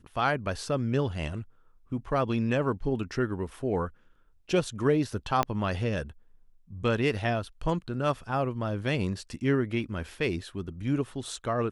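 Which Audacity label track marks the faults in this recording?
5.430000	5.430000	pop -11 dBFS

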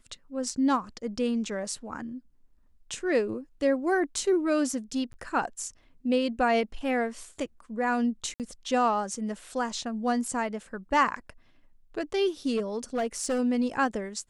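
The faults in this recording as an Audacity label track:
5.130000	5.140000	gap 10 ms
8.340000	8.400000	gap 58 ms
12.560000	13.400000	clipped -23.5 dBFS

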